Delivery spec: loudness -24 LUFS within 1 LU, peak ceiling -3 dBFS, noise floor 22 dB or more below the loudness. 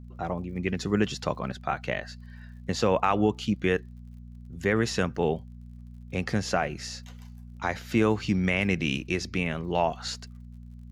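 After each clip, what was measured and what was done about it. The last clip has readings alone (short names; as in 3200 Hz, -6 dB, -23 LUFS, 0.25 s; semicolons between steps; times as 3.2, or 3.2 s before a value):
ticks 50/s; hum 60 Hz; harmonics up to 240 Hz; hum level -41 dBFS; loudness -28.0 LUFS; peak -10.5 dBFS; loudness target -24.0 LUFS
-> de-click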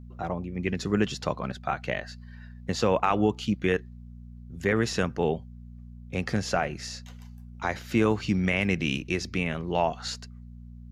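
ticks 0.18/s; hum 60 Hz; harmonics up to 240 Hz; hum level -41 dBFS
-> de-hum 60 Hz, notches 4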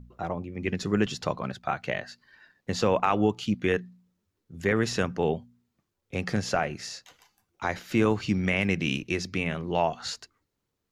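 hum none; loudness -28.5 LUFS; peak -10.0 dBFS; loudness target -24.0 LUFS
-> gain +4.5 dB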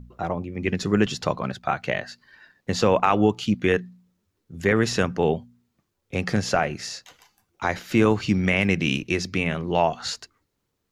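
loudness -24.0 LUFS; peak -5.5 dBFS; noise floor -77 dBFS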